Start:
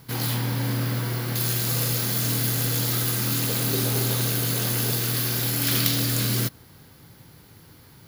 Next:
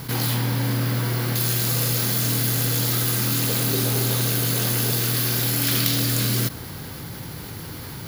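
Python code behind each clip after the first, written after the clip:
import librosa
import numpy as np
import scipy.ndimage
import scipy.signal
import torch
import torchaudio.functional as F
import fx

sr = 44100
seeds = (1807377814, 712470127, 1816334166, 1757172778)

y = fx.env_flatten(x, sr, amount_pct=50)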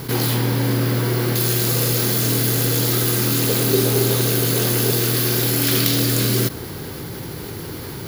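y = fx.peak_eq(x, sr, hz=390.0, db=9.0, octaves=0.7)
y = y * 10.0 ** (2.5 / 20.0)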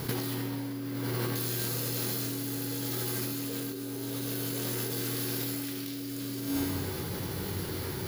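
y = fx.comb_fb(x, sr, f0_hz=93.0, decay_s=1.3, harmonics='all', damping=0.0, mix_pct=80)
y = fx.over_compress(y, sr, threshold_db=-35.0, ratio=-1.0)
y = y * 10.0 ** (1.5 / 20.0)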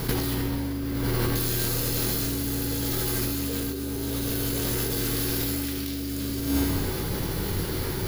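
y = fx.octave_divider(x, sr, octaves=2, level_db=-3.0)
y = y * 10.0 ** (5.5 / 20.0)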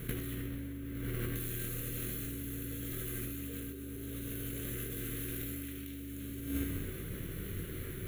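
y = fx.cheby_harmonics(x, sr, harmonics=(3,), levels_db=(-17,), full_scale_db=-12.5)
y = fx.fixed_phaser(y, sr, hz=2100.0, stages=4)
y = y * 10.0 ** (-7.0 / 20.0)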